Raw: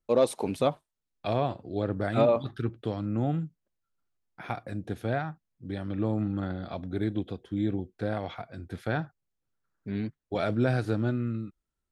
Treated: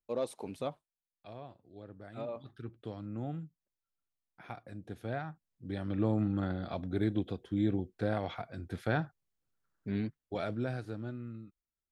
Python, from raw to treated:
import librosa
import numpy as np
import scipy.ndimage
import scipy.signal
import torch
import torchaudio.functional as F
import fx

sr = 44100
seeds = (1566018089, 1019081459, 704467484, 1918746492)

y = fx.gain(x, sr, db=fx.line((0.7, -11.5), (1.32, -20.0), (2.05, -20.0), (2.87, -10.5), (4.79, -10.5), (5.95, -1.5), (9.94, -1.5), (10.87, -12.5)))